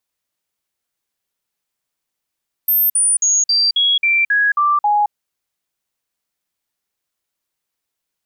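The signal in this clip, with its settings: stepped sine 13300 Hz down, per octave 2, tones 9, 0.22 s, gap 0.05 s -11.5 dBFS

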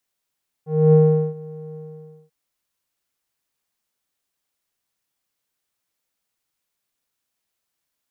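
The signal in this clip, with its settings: synth note square D#3 12 dB/oct, low-pass 450 Hz, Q 3.3, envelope 0.5 oct, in 0.11 s, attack 0.267 s, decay 0.41 s, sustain -23.5 dB, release 0.55 s, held 1.09 s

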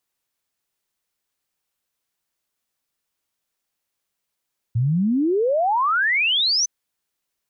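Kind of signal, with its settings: log sweep 110 Hz -> 6200 Hz 1.91 s -16.5 dBFS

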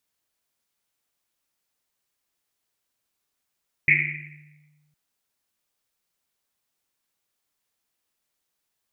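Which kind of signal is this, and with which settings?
Risset drum length 1.06 s, pitch 150 Hz, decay 1.66 s, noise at 2200 Hz, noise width 560 Hz, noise 75%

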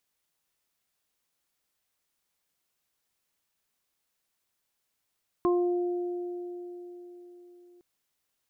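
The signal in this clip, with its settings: additive tone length 2.36 s, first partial 353 Hz, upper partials -12.5/-6 dB, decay 4.30 s, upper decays 3.35/0.41 s, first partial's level -21 dB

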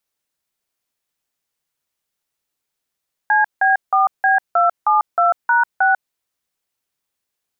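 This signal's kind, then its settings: DTMF "CB4B272#6", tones 0.145 s, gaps 0.168 s, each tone -14 dBFS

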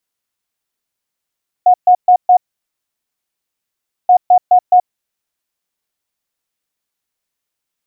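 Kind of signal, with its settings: beep pattern sine 726 Hz, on 0.08 s, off 0.13 s, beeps 4, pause 1.72 s, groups 2, -4 dBFS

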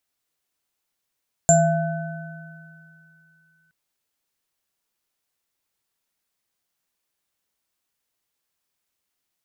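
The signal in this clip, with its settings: sine partials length 2.22 s, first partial 161 Hz, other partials 678/1510/7290 Hz, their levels 3.5/-14/5 dB, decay 2.47 s, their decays 1.63/4.05/0.26 s, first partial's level -16 dB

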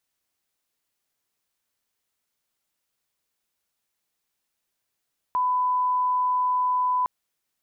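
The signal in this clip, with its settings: line-up tone -20 dBFS 1.71 s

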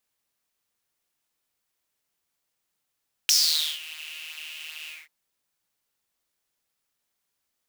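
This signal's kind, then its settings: synth patch with pulse-width modulation D#3, interval +7 st, noise -10.5 dB, filter highpass, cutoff 2000 Hz, Q 7.5, filter envelope 1.5 oct, filter decay 0.54 s, filter sustain 30%, attack 1.2 ms, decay 0.49 s, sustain -22 dB, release 0.20 s, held 1.59 s, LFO 2.6 Hz, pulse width 23%, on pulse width 18%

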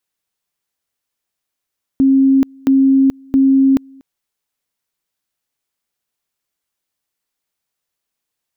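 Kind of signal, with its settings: two-level tone 269 Hz -7.5 dBFS, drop 30 dB, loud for 0.43 s, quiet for 0.24 s, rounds 3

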